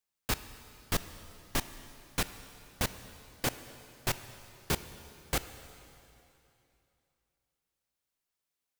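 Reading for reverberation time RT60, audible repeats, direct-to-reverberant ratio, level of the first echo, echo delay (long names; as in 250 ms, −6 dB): 2.9 s, no echo audible, 11.5 dB, no echo audible, no echo audible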